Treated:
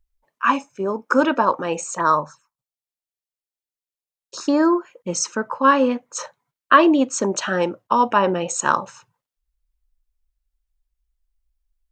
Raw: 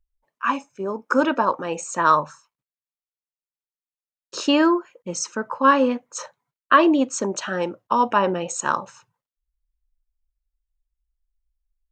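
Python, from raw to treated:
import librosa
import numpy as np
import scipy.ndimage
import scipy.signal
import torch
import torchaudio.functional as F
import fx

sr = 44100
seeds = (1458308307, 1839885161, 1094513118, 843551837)

p1 = fx.rider(x, sr, range_db=4, speed_s=0.5)
p2 = x + F.gain(torch.from_numpy(p1), 1.0).numpy()
p3 = fx.env_phaser(p2, sr, low_hz=210.0, high_hz=2900.0, full_db=-13.5, at=(1.95, 4.73))
y = F.gain(torch.from_numpy(p3), -4.5).numpy()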